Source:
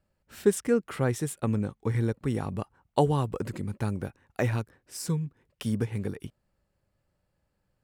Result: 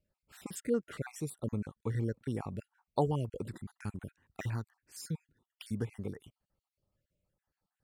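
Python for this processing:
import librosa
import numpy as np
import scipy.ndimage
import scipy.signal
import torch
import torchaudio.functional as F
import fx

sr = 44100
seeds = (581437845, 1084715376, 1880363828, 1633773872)

y = fx.spec_dropout(x, sr, seeds[0], share_pct=43)
y = fx.peak_eq(y, sr, hz=560.0, db=-7.5, octaves=0.84, at=(3.46, 5.77))
y = y * librosa.db_to_amplitude(-6.5)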